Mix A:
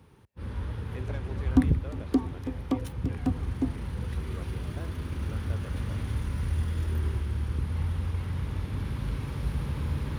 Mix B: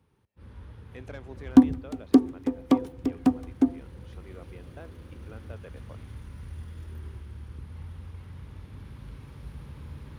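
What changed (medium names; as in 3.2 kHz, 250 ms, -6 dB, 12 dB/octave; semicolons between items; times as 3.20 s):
first sound -11.5 dB; second sound +7.5 dB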